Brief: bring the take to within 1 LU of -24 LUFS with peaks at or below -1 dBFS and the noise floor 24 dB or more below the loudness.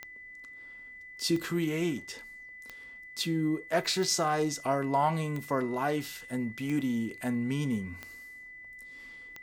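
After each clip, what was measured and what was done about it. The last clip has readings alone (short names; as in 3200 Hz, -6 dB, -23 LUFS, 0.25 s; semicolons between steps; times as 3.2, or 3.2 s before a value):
clicks 8; steady tone 2000 Hz; tone level -45 dBFS; loudness -31.0 LUFS; peak -14.5 dBFS; loudness target -24.0 LUFS
-> de-click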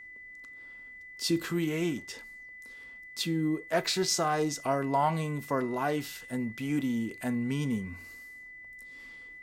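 clicks 0; steady tone 2000 Hz; tone level -45 dBFS
-> notch 2000 Hz, Q 30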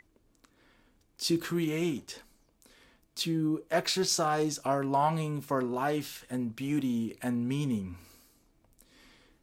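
steady tone none; loudness -31.0 LUFS; peak -14.5 dBFS; loudness target -24.0 LUFS
-> gain +7 dB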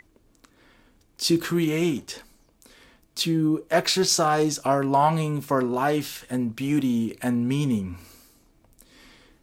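loudness -24.0 LUFS; peak -7.5 dBFS; noise floor -62 dBFS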